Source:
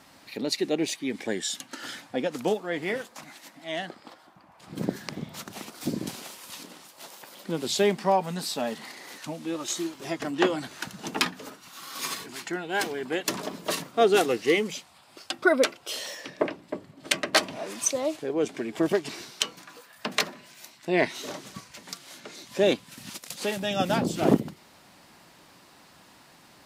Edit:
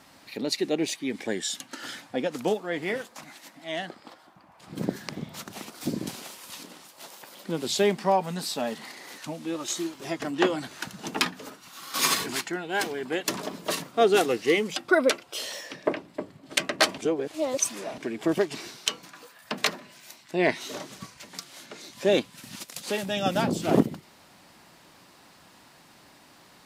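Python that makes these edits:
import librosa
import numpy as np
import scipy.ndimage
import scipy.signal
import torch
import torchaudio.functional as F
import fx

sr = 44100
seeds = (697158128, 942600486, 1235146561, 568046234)

y = fx.edit(x, sr, fx.clip_gain(start_s=11.94, length_s=0.47, db=9.0),
    fx.cut(start_s=14.76, length_s=0.54),
    fx.reverse_span(start_s=17.52, length_s=1.0), tone=tone)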